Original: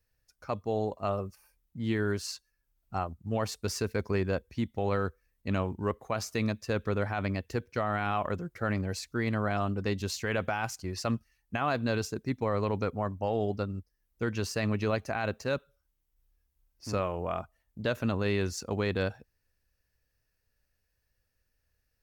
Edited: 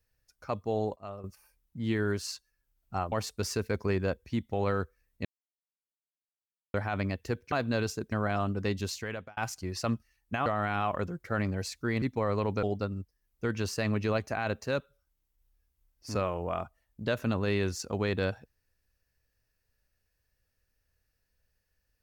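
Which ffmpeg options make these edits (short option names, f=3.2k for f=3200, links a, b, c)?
-filter_complex "[0:a]asplit=12[a][b][c][d][e][f][g][h][i][j][k][l];[a]atrim=end=0.962[m];[b]atrim=start=0.958:end=1.242,asetpts=PTS-STARTPTS,volume=-11dB[n];[c]atrim=start=1.238:end=3.122[o];[d]atrim=start=3.368:end=5.5,asetpts=PTS-STARTPTS,afade=t=out:st=2.128:d=0.004:c=hsin[p];[e]atrim=start=5.5:end=6.99,asetpts=PTS-STARTPTS,volume=0[q];[f]atrim=start=6.99:end=7.772,asetpts=PTS-STARTPTS,afade=t=in:d=0.004:c=hsin[r];[g]atrim=start=11.668:end=12.272[s];[h]atrim=start=9.328:end=10.58,asetpts=PTS-STARTPTS,afade=t=out:st=0.712:d=0.54[t];[i]atrim=start=10.58:end=11.672,asetpts=PTS-STARTPTS,afade=t=in:d=0.004:c=hsin[u];[j]atrim=start=7.768:end=9.332[v];[k]atrim=start=12.268:end=12.882[w];[l]atrim=start=13.408[x];[m][n]acrossfade=d=0.004:c1=hsin:c2=hsin[y];[y][o]acrossfade=d=0.004:c1=hsin:c2=hsin[z];[p][q][r]concat=n=3:v=0:a=1[aa];[z][aa]acrossfade=d=0.004:c1=hsin:c2=hsin[ab];[ab][s]acrossfade=d=0.004:c1=hsin:c2=hsin[ac];[t][u]concat=n=2:v=0:a=1[ad];[ac][ad]acrossfade=d=0.004:c1=hsin:c2=hsin[ae];[ae][v]acrossfade=d=0.004:c1=hsin:c2=hsin[af];[af][w]acrossfade=d=0.004:c1=hsin:c2=hsin[ag];[ag][x]acrossfade=d=0.004:c1=hsin:c2=hsin"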